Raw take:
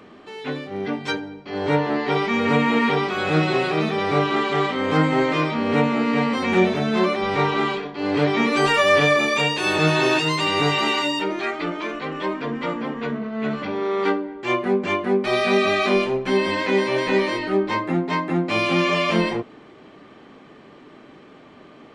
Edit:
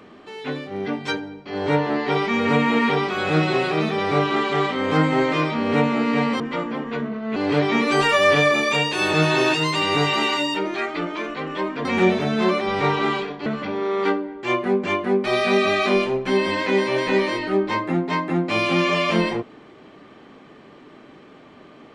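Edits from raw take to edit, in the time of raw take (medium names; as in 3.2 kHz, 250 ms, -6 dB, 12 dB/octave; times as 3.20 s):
6.40–8.01 s: swap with 12.50–13.46 s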